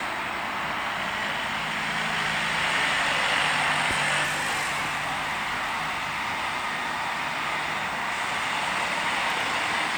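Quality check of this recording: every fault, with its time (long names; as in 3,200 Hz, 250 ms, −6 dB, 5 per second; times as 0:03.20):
0:04.23–0:06.33: clipping −23.5 dBFS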